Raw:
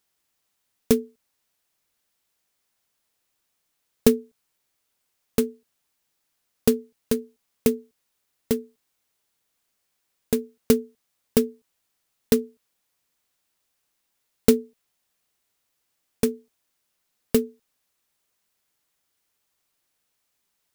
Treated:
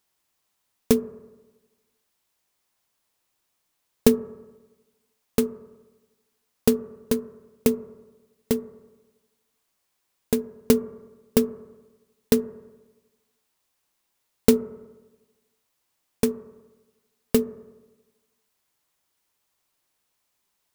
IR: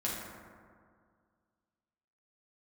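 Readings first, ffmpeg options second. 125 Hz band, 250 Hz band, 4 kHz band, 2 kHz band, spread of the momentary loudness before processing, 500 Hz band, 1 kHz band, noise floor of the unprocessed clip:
+1.0 dB, +0.5 dB, 0.0 dB, 0.0 dB, 9 LU, 0.0 dB, +2.5 dB, -76 dBFS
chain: -filter_complex "[0:a]equalizer=f=990:w=2.5:g=3.5,asplit=2[a][b];[b]lowpass=f=1.3k:t=q:w=2[c];[1:a]atrim=start_sample=2205,asetrate=79380,aresample=44100,lowpass=1.8k[d];[c][d]afir=irnorm=-1:irlink=0,volume=-14.5dB[e];[a][e]amix=inputs=2:normalize=0"

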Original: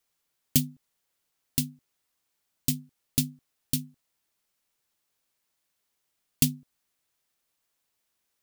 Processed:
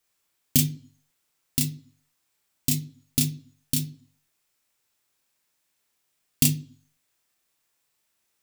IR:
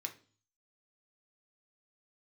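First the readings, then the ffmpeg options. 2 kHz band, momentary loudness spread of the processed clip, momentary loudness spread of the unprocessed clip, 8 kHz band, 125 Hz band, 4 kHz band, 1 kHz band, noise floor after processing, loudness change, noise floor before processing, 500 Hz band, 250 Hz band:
+5.0 dB, 12 LU, 10 LU, +4.5 dB, +5.0 dB, +3.5 dB, n/a, -75 dBFS, +3.5 dB, -79 dBFS, +3.5 dB, +2.5 dB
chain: -filter_complex "[0:a]asplit=2[a][b];[1:a]atrim=start_sample=2205,adelay=30[c];[b][c]afir=irnorm=-1:irlink=0,volume=0.5dB[d];[a][d]amix=inputs=2:normalize=0,volume=1.5dB"

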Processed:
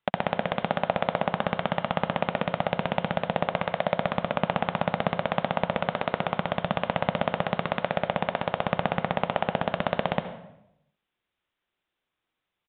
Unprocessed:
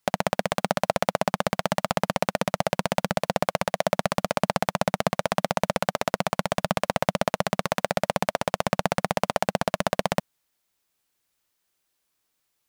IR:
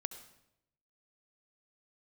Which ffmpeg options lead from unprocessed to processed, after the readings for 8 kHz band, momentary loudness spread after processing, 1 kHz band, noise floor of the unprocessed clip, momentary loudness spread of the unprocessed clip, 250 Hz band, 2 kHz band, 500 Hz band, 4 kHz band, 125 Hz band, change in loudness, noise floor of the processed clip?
under -40 dB, 2 LU, -1.5 dB, -76 dBFS, 2 LU, -1.5 dB, -1.5 dB, -2.0 dB, -4.0 dB, -1.0 dB, -2.0 dB, -85 dBFS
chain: -filter_complex "[1:a]atrim=start_sample=2205[a];[0:a][a]afir=irnorm=-1:irlink=0,aresample=8000,aresample=44100"

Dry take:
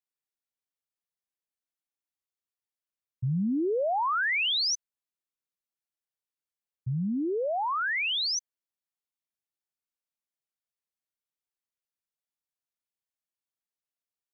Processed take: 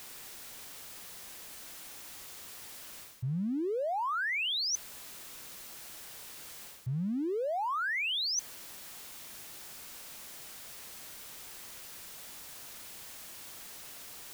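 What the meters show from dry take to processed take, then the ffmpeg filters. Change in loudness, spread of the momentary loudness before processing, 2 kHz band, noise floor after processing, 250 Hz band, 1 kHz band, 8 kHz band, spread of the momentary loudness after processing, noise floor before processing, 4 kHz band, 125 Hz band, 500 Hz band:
-9.5 dB, 8 LU, -4.5 dB, -48 dBFS, -4.5 dB, -4.5 dB, n/a, 14 LU, under -85 dBFS, -4.5 dB, -4.5 dB, -4.5 dB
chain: -af "aeval=exprs='val(0)+0.5*0.00562*sgn(val(0))':c=same,areverse,acompressor=threshold=-39dB:ratio=10,areverse,volume=7.5dB"

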